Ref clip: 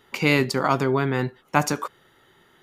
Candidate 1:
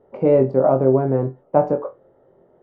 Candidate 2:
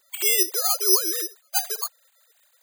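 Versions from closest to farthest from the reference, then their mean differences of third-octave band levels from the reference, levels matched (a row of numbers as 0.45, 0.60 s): 1, 2; 11.5, 20.0 dB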